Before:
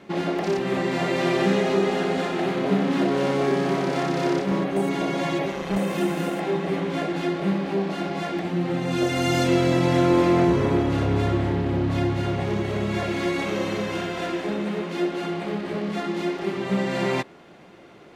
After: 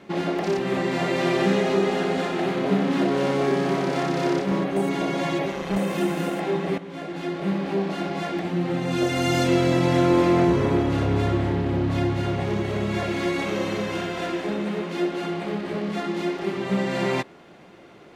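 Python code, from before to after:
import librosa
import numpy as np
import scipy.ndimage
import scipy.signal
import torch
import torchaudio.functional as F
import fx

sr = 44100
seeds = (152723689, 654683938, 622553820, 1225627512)

y = fx.edit(x, sr, fx.fade_in_from(start_s=6.78, length_s=0.9, floor_db=-13.5), tone=tone)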